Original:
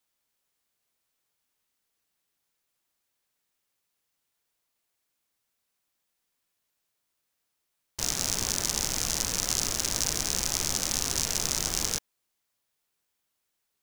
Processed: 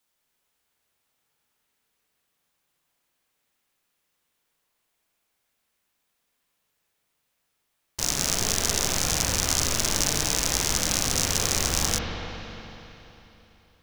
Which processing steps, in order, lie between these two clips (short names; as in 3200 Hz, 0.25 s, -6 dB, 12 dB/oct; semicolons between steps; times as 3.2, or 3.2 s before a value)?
spring tank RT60 3.4 s, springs 41/55 ms, chirp 60 ms, DRR -1.5 dB; gain +3 dB